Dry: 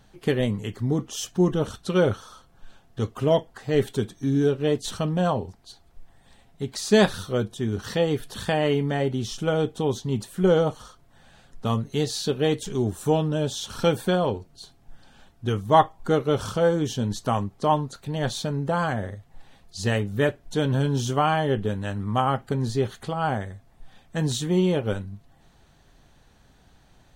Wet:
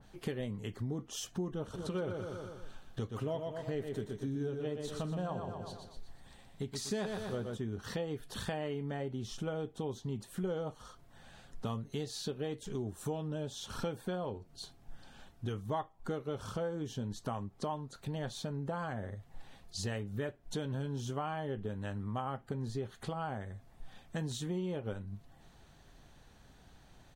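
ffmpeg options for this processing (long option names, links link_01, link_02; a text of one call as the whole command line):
ffmpeg -i in.wav -filter_complex "[0:a]asplit=3[link_01][link_02][link_03];[link_01]afade=type=out:start_time=1.73:duration=0.02[link_04];[link_02]aecho=1:1:121|242|363|484|605:0.473|0.213|0.0958|0.0431|0.0194,afade=type=in:start_time=1.73:duration=0.02,afade=type=out:start_time=7.56:duration=0.02[link_05];[link_03]afade=type=in:start_time=7.56:duration=0.02[link_06];[link_04][link_05][link_06]amix=inputs=3:normalize=0,acompressor=threshold=-34dB:ratio=4,adynamicequalizer=threshold=0.00224:dfrequency=2200:dqfactor=0.7:tfrequency=2200:tqfactor=0.7:attack=5:release=100:ratio=0.375:range=2.5:mode=cutabove:tftype=highshelf,volume=-2.5dB" out.wav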